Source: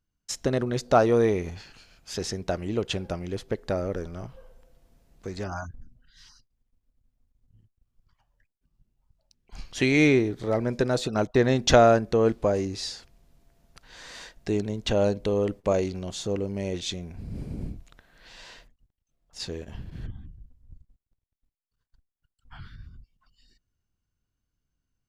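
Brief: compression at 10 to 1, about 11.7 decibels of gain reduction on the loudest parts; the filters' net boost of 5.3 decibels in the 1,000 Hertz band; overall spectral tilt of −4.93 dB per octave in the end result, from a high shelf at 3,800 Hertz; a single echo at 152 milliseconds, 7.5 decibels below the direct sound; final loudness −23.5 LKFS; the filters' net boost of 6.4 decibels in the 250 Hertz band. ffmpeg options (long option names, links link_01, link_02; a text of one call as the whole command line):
ffmpeg -i in.wav -af "equalizer=frequency=250:width_type=o:gain=7.5,equalizer=frequency=1000:width_type=o:gain=7.5,highshelf=frequency=3800:gain=6.5,acompressor=threshold=-19dB:ratio=10,aecho=1:1:152:0.422,volume=3dB" out.wav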